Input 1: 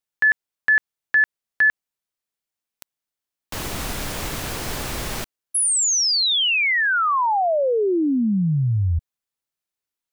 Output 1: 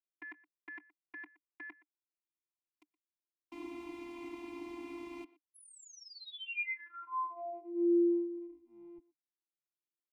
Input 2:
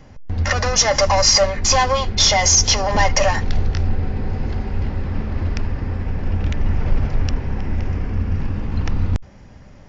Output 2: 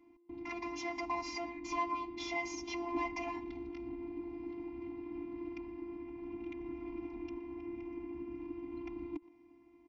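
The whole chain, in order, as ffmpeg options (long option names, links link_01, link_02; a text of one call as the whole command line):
ffmpeg -i in.wav -filter_complex "[0:a]equalizer=frequency=4600:width=0.48:gain=-4,afftfilt=real='hypot(re,im)*cos(PI*b)':imag='0':win_size=512:overlap=0.75,asplit=2[link_01][link_02];[link_02]adelay=120,highpass=300,lowpass=3400,asoftclip=type=hard:threshold=-13dB,volume=-19dB[link_03];[link_01][link_03]amix=inputs=2:normalize=0,adynamicequalizer=threshold=0.00447:dfrequency=180:dqfactor=2.4:tfrequency=180:tqfactor=2.4:attack=5:release=100:ratio=0.375:range=1.5:mode=cutabove:tftype=bell,asplit=3[link_04][link_05][link_06];[link_04]bandpass=frequency=300:width_type=q:width=8,volume=0dB[link_07];[link_05]bandpass=frequency=870:width_type=q:width=8,volume=-6dB[link_08];[link_06]bandpass=frequency=2240:width_type=q:width=8,volume=-9dB[link_09];[link_07][link_08][link_09]amix=inputs=3:normalize=0,volume=2dB" out.wav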